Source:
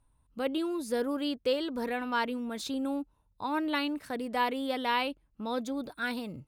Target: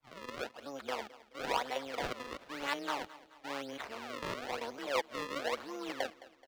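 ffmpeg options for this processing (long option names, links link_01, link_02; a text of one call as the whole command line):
ffmpeg -i in.wav -filter_complex "[0:a]areverse,tremolo=f=140:d=0.667,acrusher=samples=33:mix=1:aa=0.000001:lfo=1:lforange=52.8:lforate=1,acrossover=split=460 5500:gain=0.141 1 0.2[link_01][link_02][link_03];[link_01][link_02][link_03]amix=inputs=3:normalize=0,asplit=2[link_04][link_05];[link_05]aecho=0:1:214|428|642|856:0.119|0.0559|0.0263|0.0123[link_06];[link_04][link_06]amix=inputs=2:normalize=0,volume=1dB" out.wav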